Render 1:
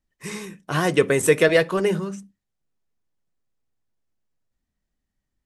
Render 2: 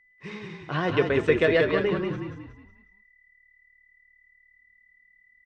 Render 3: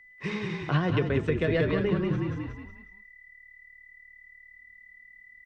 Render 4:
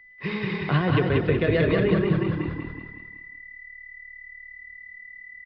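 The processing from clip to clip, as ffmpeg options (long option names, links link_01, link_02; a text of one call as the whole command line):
ffmpeg -i in.wav -filter_complex "[0:a]lowpass=frequency=4000:width=0.5412,lowpass=frequency=4000:width=1.3066,aeval=exprs='val(0)+0.002*sin(2*PI*2000*n/s)':channel_layout=same,asplit=6[link_01][link_02][link_03][link_04][link_05][link_06];[link_02]adelay=183,afreqshift=-37,volume=-4dB[link_07];[link_03]adelay=366,afreqshift=-74,volume=-12.2dB[link_08];[link_04]adelay=549,afreqshift=-111,volume=-20.4dB[link_09];[link_05]adelay=732,afreqshift=-148,volume=-28.5dB[link_10];[link_06]adelay=915,afreqshift=-185,volume=-36.7dB[link_11];[link_01][link_07][link_08][link_09][link_10][link_11]amix=inputs=6:normalize=0,volume=-5dB" out.wav
ffmpeg -i in.wav -filter_complex "[0:a]acrossover=split=220[link_01][link_02];[link_02]acompressor=threshold=-42dB:ratio=2[link_03];[link_01][link_03]amix=inputs=2:normalize=0,alimiter=limit=-22.5dB:level=0:latency=1:release=470,volume=8dB" out.wav
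ffmpeg -i in.wav -filter_complex "[0:a]aresample=11025,aresample=44100,asplit=2[link_01][link_02];[link_02]aecho=0:1:188|376|564|752|940:0.631|0.24|0.0911|0.0346|0.0132[link_03];[link_01][link_03]amix=inputs=2:normalize=0,volume=3dB" out.wav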